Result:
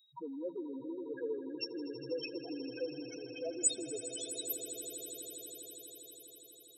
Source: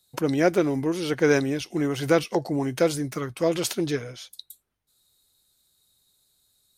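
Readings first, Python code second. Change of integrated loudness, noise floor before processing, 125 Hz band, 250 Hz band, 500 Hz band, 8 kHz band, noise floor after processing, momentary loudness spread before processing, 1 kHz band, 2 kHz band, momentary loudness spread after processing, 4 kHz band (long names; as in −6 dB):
−15.0 dB, −71 dBFS, −28.5 dB, −17.0 dB, −16.0 dB, 0.0 dB, −58 dBFS, 10 LU, −23.5 dB, −22.0 dB, 15 LU, −9.0 dB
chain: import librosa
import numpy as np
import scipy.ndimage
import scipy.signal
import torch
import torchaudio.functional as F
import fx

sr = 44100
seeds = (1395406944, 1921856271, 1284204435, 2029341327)

p1 = fx.spec_topn(x, sr, count=2)
p2 = fx.over_compress(p1, sr, threshold_db=-29.0, ratio=-1.0)
p3 = p1 + (p2 * 10.0 ** (-1.0 / 20.0))
p4 = np.diff(p3, prepend=0.0)
p5 = fx.echo_swell(p4, sr, ms=81, loudest=8, wet_db=-15.5)
y = p5 * 10.0 ** (7.0 / 20.0)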